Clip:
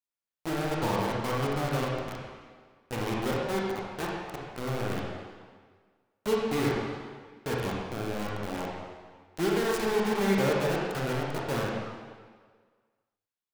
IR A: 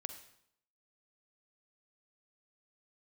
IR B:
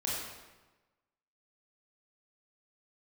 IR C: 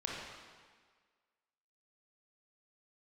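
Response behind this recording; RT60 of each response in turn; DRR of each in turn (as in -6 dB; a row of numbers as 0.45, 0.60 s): C; 0.70, 1.2, 1.6 s; 8.0, -6.0, -3.5 dB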